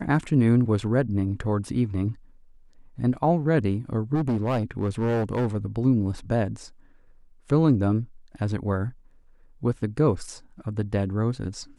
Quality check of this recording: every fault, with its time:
4.14–5.56 clipped -20.5 dBFS

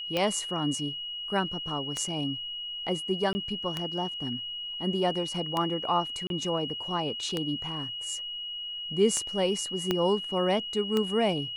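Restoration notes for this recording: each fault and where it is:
tick 33 1/3 rpm -14 dBFS
tone 2900 Hz -34 dBFS
3.33–3.35 gap 20 ms
6.27–6.3 gap 32 ms
9.91 pop -12 dBFS

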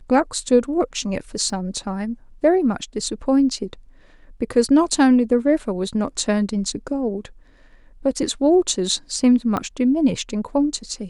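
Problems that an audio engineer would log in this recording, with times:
1.5 gap 2.4 ms
9.57 pop -11 dBFS

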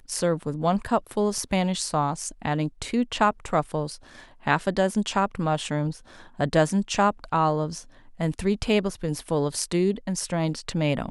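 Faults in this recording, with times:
1.38 gap 2.5 ms

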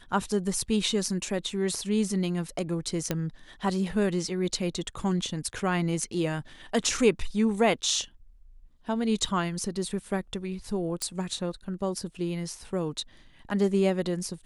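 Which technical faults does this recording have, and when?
3.11 pop -12 dBFS
9.25 gap 2.8 ms
11.02 pop -14 dBFS

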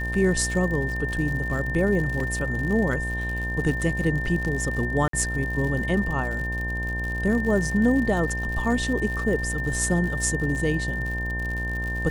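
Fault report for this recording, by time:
buzz 60 Hz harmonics 18 -30 dBFS
crackle 100/s -31 dBFS
tone 1800 Hz -29 dBFS
2.2 gap 2.9 ms
5.08–5.13 gap 53 ms

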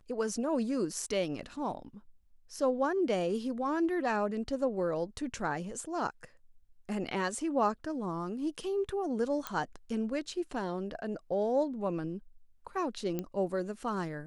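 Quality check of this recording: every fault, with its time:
9.47 pop -17 dBFS
13.19 pop -21 dBFS

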